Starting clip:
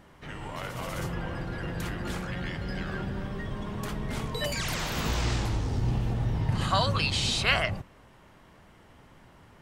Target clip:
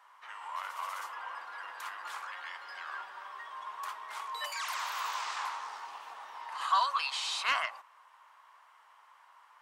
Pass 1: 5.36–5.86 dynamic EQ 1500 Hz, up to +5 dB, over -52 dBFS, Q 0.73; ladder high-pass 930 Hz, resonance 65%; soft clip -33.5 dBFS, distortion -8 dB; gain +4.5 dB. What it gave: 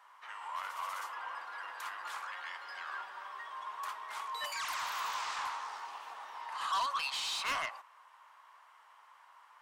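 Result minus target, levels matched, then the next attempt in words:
soft clip: distortion +12 dB
5.36–5.86 dynamic EQ 1500 Hz, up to +5 dB, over -52 dBFS, Q 0.73; ladder high-pass 930 Hz, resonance 65%; soft clip -22 dBFS, distortion -19 dB; gain +4.5 dB

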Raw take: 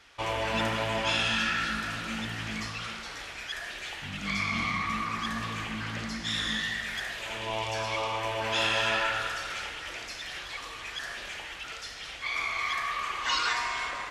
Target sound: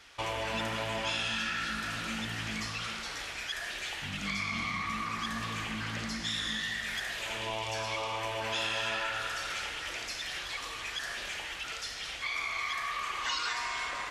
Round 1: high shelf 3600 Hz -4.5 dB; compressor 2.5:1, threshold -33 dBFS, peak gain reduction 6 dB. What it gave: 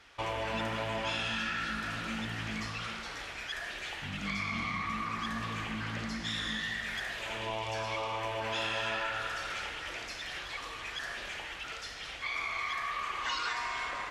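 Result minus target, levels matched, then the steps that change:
8000 Hz band -5.0 dB
change: high shelf 3600 Hz +4.5 dB

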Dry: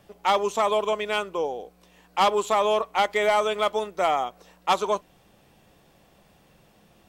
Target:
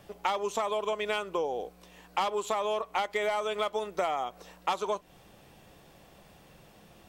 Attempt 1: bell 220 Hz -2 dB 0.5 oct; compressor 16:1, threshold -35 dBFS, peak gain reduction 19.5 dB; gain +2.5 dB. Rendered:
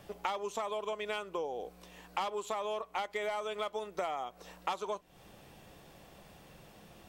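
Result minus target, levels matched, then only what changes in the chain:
compressor: peak gain reduction +6 dB
change: compressor 16:1, threshold -28.5 dBFS, peak gain reduction 13 dB

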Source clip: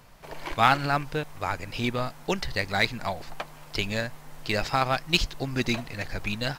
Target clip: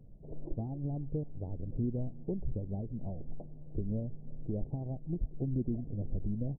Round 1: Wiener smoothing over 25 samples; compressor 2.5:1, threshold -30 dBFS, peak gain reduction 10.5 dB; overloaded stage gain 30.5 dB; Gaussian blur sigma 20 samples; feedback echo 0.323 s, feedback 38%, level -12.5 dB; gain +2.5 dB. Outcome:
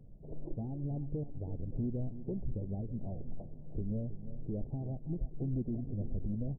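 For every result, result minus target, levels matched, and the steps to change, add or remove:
echo-to-direct +11 dB; overloaded stage: distortion +6 dB
change: feedback echo 0.323 s, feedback 38%, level -23.5 dB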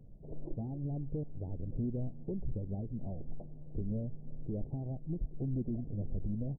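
overloaded stage: distortion +6 dB
change: overloaded stage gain 24.5 dB

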